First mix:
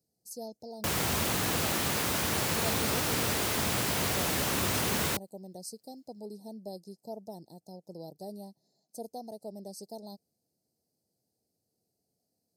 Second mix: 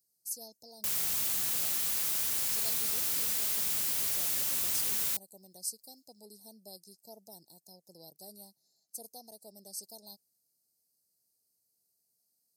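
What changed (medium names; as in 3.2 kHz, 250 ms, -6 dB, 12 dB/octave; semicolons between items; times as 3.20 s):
speech +6.5 dB; master: add pre-emphasis filter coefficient 0.9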